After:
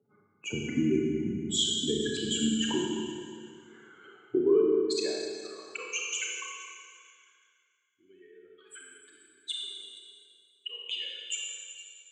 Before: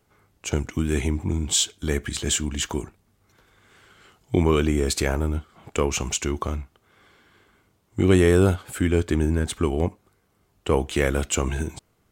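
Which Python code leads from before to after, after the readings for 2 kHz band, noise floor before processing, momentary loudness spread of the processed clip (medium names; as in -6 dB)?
-8.0 dB, -67 dBFS, 19 LU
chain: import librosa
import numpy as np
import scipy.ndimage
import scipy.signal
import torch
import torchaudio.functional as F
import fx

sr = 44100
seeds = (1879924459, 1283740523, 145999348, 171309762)

y = fx.spec_expand(x, sr, power=2.7)
y = scipy.signal.sosfilt(scipy.signal.butter(2, 5100.0, 'lowpass', fs=sr, output='sos'), y)
y = fx.dynamic_eq(y, sr, hz=800.0, q=1.3, threshold_db=-41.0, ratio=4.0, max_db=-3)
y = fx.filter_sweep_highpass(y, sr, from_hz=210.0, to_hz=3000.0, start_s=3.37, end_s=6.77, q=1.9)
y = scipy.signal.sosfilt(scipy.signal.butter(4, 99.0, 'highpass', fs=sr, output='sos'), y)
y = y + 10.0 ** (-17.5 / 20.0) * np.pad(y, (int(474 * sr / 1000.0), 0))[:len(y)]
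y = fx.rev_schroeder(y, sr, rt60_s=2.0, comb_ms=28, drr_db=-2.0)
y = y * librosa.db_to_amplitude(-4.0)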